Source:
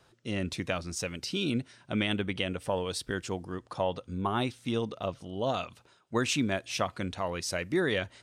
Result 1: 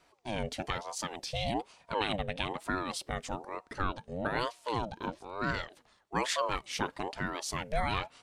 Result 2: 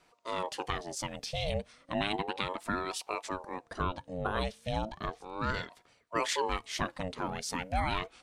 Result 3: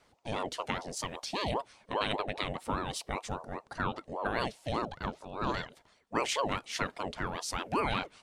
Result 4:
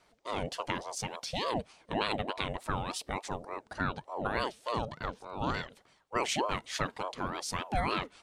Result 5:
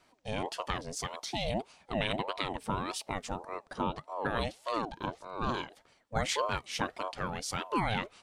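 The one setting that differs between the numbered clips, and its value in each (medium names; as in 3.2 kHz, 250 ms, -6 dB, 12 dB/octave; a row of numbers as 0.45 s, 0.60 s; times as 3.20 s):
ring modulator with a swept carrier, at: 1.1 Hz, 0.34 Hz, 5 Hz, 3.4 Hz, 1.7 Hz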